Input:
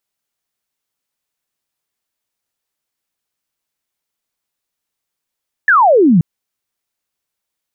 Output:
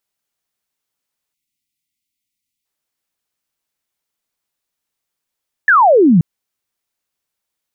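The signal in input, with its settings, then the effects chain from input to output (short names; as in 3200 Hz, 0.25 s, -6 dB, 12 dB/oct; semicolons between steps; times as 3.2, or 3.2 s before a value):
laser zap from 1800 Hz, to 150 Hz, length 0.53 s sine, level -6 dB
spectral delete 1.34–2.65, 340–1900 Hz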